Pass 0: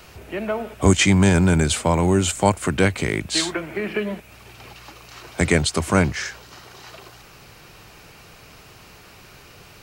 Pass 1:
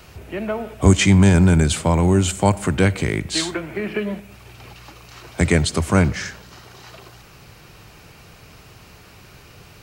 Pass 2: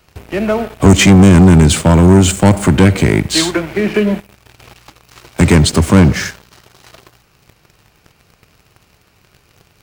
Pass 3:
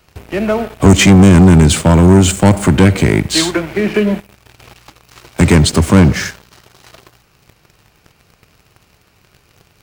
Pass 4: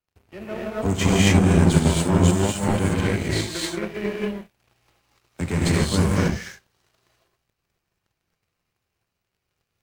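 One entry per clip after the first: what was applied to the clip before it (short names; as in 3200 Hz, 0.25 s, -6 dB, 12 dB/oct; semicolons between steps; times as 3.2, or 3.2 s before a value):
bell 90 Hz +5.5 dB 2.7 oct; on a send at -19 dB: reverb RT60 0.90 s, pre-delay 15 ms; on the sum: gain -1 dB
dynamic EQ 250 Hz, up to +6 dB, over -27 dBFS, Q 0.76; sample leveller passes 3; gain -2.5 dB
nothing audible
non-linear reverb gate 0.3 s rising, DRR -5 dB; power-law curve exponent 1.4; gain -12 dB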